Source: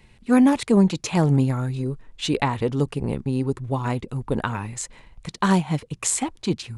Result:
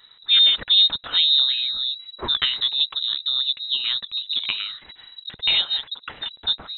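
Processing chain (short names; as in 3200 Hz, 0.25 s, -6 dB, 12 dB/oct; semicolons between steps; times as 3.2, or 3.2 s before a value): 4.12–6.26 bands offset in time lows, highs 50 ms, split 280 Hz; inverted band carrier 3900 Hz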